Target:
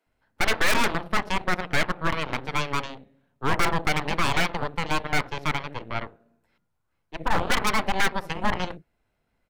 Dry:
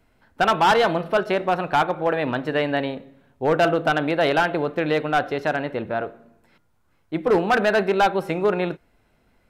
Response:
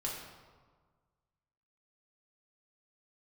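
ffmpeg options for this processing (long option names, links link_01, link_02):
-filter_complex "[0:a]acrossover=split=280[link_01][link_02];[link_01]adelay=60[link_03];[link_03][link_02]amix=inputs=2:normalize=0,aeval=exprs='0.501*(cos(1*acos(clip(val(0)/0.501,-1,1)))-cos(1*PI/2))+0.2*(cos(3*acos(clip(val(0)/0.501,-1,1)))-cos(3*PI/2))+0.224*(cos(4*acos(clip(val(0)/0.501,-1,1)))-cos(4*PI/2))+0.0355*(cos(6*acos(clip(val(0)/0.501,-1,1)))-cos(6*PI/2))':channel_layout=same,volume=17dB,asoftclip=hard,volume=-17dB,volume=3dB"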